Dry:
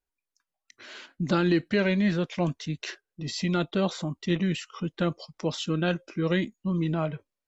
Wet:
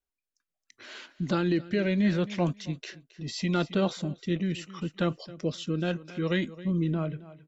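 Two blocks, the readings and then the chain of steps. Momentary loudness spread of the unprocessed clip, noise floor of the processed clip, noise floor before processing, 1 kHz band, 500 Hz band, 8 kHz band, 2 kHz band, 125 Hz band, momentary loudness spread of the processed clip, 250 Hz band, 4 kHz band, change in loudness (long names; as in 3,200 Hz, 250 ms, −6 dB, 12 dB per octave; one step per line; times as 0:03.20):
11 LU, below −85 dBFS, below −85 dBFS, −2.5 dB, −2.0 dB, can't be measured, −3.5 dB, −1.0 dB, 11 LU, −1.5 dB, −3.0 dB, −1.5 dB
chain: repeating echo 269 ms, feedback 24%, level −17.5 dB
rotating-speaker cabinet horn 0.75 Hz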